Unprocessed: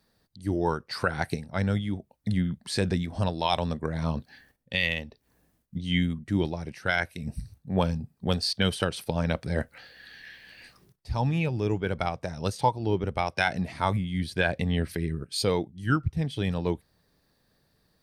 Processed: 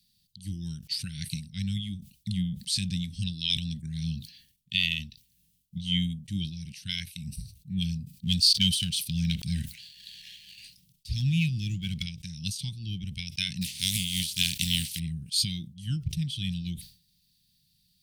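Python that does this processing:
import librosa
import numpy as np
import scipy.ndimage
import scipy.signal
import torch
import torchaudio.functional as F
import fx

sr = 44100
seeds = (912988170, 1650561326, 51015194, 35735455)

y = fx.leveller(x, sr, passes=1, at=(8.18, 12.03))
y = fx.spec_flatten(y, sr, power=0.48, at=(13.61, 14.98), fade=0.02)
y = scipy.signal.sosfilt(scipy.signal.ellip(3, 1.0, 50, [180.0, 3000.0], 'bandstop', fs=sr, output='sos'), y)
y = fx.low_shelf(y, sr, hz=250.0, db=-10.0)
y = fx.sustainer(y, sr, db_per_s=130.0)
y = y * 10.0 ** (5.5 / 20.0)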